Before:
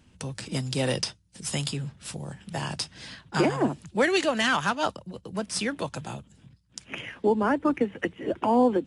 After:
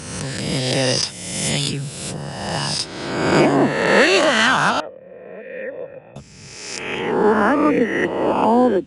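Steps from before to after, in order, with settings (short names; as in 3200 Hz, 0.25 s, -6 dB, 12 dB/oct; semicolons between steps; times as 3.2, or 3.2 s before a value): spectral swells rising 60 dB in 1.32 s; 4.8–6.16 vocal tract filter e; gain +5 dB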